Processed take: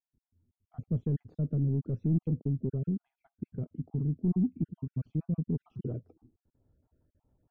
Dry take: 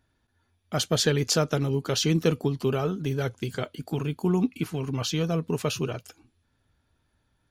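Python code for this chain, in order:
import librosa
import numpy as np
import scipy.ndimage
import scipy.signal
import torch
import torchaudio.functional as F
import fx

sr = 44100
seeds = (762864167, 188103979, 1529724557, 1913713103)

y = fx.spec_dropout(x, sr, seeds[0], share_pct=42)
y = 10.0 ** (-22.0 / 20.0) * np.tanh(y / 10.0 ** (-22.0 / 20.0))
y = fx.filter_sweep_lowpass(y, sr, from_hz=220.0, to_hz=590.0, start_s=5.53, end_s=6.81, q=1.2)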